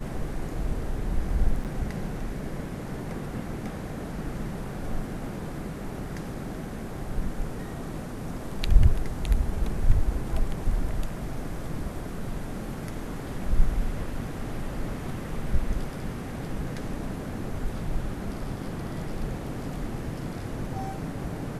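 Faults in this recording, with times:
0:01.64–0:01.65: drop-out 8 ms

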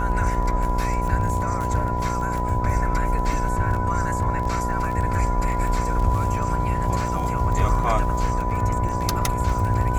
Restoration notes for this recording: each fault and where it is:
mains buzz 60 Hz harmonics 15 −27 dBFS
surface crackle 19 per second −27 dBFS
whistle 990 Hz −26 dBFS

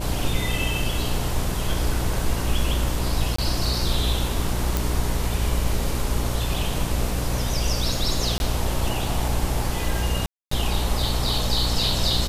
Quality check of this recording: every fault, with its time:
mains buzz 60 Hz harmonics 10 −27 dBFS
0:03.36–0:03.38: drop-out 24 ms
0:04.77: click
0:08.38–0:08.40: drop-out 21 ms
0:10.26–0:10.51: drop-out 254 ms

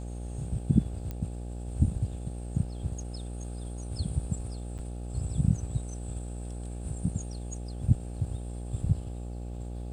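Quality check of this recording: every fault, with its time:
mains buzz 60 Hz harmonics 14 −37 dBFS
0:01.11: click −23 dBFS
0:04.78–0:04.79: drop-out 8 ms

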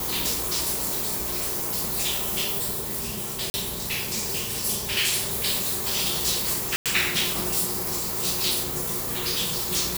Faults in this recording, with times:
0:03.50–0:03.54: drop-out 40 ms
0:06.76–0:06.86: drop-out 97 ms

